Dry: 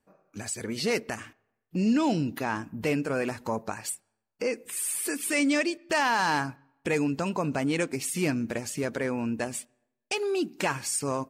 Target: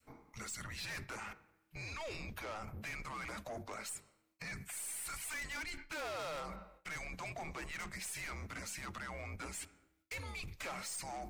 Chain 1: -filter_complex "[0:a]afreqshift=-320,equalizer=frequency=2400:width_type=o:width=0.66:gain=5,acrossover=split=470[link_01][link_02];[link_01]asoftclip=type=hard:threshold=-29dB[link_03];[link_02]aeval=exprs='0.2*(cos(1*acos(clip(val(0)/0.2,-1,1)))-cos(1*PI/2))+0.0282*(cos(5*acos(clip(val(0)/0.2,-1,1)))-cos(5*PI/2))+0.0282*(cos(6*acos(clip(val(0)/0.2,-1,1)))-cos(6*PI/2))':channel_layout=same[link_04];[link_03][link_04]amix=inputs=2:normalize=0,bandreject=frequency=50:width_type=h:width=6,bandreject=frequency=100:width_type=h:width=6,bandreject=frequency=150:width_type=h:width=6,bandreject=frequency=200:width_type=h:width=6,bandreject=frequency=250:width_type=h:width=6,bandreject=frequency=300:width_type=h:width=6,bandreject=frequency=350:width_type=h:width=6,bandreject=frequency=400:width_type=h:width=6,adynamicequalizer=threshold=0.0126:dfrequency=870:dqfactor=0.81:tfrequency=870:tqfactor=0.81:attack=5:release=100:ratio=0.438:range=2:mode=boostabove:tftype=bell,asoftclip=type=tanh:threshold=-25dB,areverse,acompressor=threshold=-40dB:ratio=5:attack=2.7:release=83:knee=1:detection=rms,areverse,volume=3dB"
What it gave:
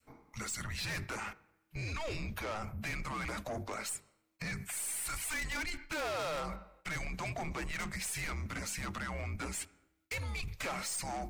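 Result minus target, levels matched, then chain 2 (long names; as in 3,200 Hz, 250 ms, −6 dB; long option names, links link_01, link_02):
downward compressor: peak gain reduction −5 dB; hard clipping: distortion −4 dB
-filter_complex "[0:a]afreqshift=-320,equalizer=frequency=2400:width_type=o:width=0.66:gain=5,acrossover=split=470[link_01][link_02];[link_01]asoftclip=type=hard:threshold=-36.5dB[link_03];[link_02]aeval=exprs='0.2*(cos(1*acos(clip(val(0)/0.2,-1,1)))-cos(1*PI/2))+0.0282*(cos(5*acos(clip(val(0)/0.2,-1,1)))-cos(5*PI/2))+0.0282*(cos(6*acos(clip(val(0)/0.2,-1,1)))-cos(6*PI/2))':channel_layout=same[link_04];[link_03][link_04]amix=inputs=2:normalize=0,bandreject=frequency=50:width_type=h:width=6,bandreject=frequency=100:width_type=h:width=6,bandreject=frequency=150:width_type=h:width=6,bandreject=frequency=200:width_type=h:width=6,bandreject=frequency=250:width_type=h:width=6,bandreject=frequency=300:width_type=h:width=6,bandreject=frequency=350:width_type=h:width=6,bandreject=frequency=400:width_type=h:width=6,adynamicequalizer=threshold=0.0126:dfrequency=870:dqfactor=0.81:tfrequency=870:tqfactor=0.81:attack=5:release=100:ratio=0.438:range=2:mode=boostabove:tftype=bell,asoftclip=type=tanh:threshold=-25dB,areverse,acompressor=threshold=-46.5dB:ratio=5:attack=2.7:release=83:knee=1:detection=rms,areverse,volume=3dB"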